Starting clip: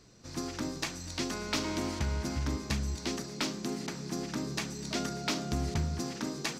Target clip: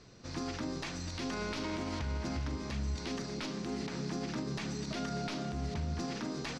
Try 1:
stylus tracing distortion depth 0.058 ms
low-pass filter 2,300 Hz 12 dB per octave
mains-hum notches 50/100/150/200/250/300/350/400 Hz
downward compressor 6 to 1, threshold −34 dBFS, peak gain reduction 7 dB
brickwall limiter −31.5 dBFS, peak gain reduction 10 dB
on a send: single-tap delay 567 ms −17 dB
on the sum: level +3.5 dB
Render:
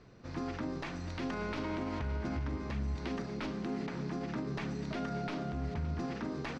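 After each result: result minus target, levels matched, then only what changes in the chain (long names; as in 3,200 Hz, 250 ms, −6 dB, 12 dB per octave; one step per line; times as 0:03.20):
4,000 Hz band −7.0 dB; echo 299 ms early
change: low-pass filter 4,900 Hz 12 dB per octave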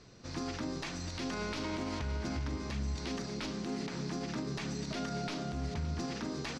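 echo 299 ms early
change: single-tap delay 866 ms −17 dB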